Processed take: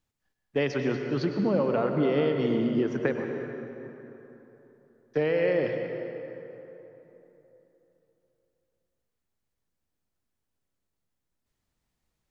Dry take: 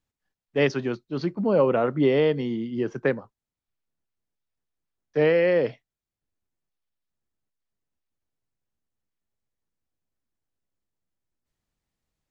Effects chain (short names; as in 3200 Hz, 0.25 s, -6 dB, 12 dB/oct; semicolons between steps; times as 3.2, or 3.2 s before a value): compressor, threshold -25 dBFS, peak gain reduction 9.5 dB; reverb RT60 3.5 s, pre-delay 93 ms, DRR 4 dB; gain +2 dB